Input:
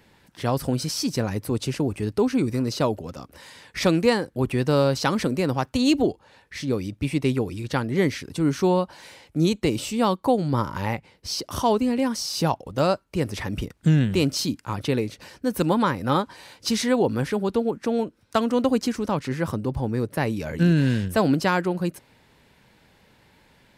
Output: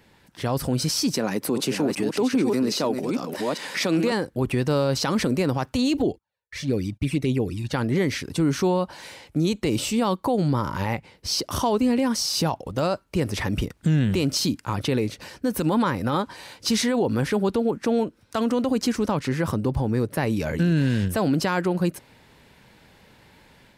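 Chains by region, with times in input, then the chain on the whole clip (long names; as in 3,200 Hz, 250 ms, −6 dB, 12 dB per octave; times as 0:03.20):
0:01.14–0:04.12: delay that plays each chunk backwards 406 ms, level −7 dB + high-pass filter 180 Hz 24 dB per octave + upward compression, threshold −25 dBFS
0:05.97–0:07.73: noise gate −47 dBFS, range −35 dB + flanger swept by the level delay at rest 2.7 ms, full sweep at −18 dBFS
whole clip: automatic gain control gain up to 4 dB; brickwall limiter −14 dBFS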